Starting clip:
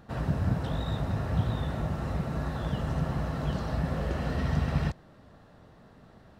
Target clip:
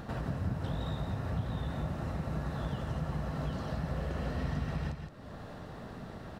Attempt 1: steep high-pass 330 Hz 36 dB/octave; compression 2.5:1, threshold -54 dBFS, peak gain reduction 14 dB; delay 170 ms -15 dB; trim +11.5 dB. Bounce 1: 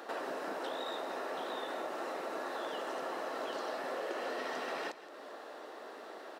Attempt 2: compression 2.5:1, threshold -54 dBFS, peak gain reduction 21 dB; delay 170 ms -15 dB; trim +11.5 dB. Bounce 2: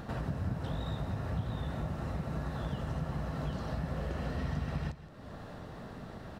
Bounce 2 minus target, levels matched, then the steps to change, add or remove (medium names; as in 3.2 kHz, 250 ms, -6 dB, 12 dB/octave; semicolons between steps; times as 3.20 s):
echo-to-direct -8 dB
change: delay 170 ms -7 dB